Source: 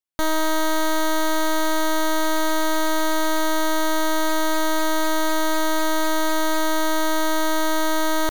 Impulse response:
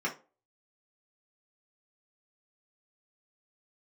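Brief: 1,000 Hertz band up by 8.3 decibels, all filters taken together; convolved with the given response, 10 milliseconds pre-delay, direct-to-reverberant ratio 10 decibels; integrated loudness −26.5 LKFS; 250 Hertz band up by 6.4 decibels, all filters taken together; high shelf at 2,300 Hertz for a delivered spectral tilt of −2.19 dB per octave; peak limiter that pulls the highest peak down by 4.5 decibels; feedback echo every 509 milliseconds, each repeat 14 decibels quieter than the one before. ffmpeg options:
-filter_complex "[0:a]equalizer=frequency=250:width_type=o:gain=8.5,equalizer=frequency=1000:width_type=o:gain=7.5,highshelf=frequency=2300:gain=8,alimiter=limit=-11.5dB:level=0:latency=1,aecho=1:1:509|1018:0.2|0.0399,asplit=2[link_01][link_02];[1:a]atrim=start_sample=2205,adelay=10[link_03];[link_02][link_03]afir=irnorm=-1:irlink=0,volume=-17dB[link_04];[link_01][link_04]amix=inputs=2:normalize=0,volume=-8dB"

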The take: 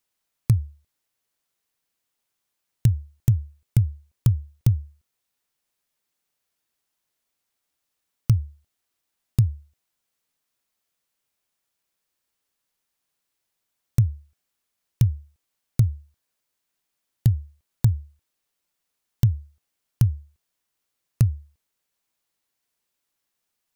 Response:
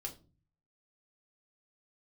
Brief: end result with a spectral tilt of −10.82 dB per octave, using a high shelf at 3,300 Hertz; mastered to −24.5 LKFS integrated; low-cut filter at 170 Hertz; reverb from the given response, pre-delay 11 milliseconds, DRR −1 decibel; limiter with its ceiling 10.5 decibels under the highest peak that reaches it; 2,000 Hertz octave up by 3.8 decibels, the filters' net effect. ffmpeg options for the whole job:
-filter_complex "[0:a]highpass=170,equalizer=frequency=2000:width_type=o:gain=7,highshelf=frequency=3300:gain=-7,alimiter=limit=-24dB:level=0:latency=1,asplit=2[link_01][link_02];[1:a]atrim=start_sample=2205,adelay=11[link_03];[link_02][link_03]afir=irnorm=-1:irlink=0,volume=3dB[link_04];[link_01][link_04]amix=inputs=2:normalize=0,volume=10dB"

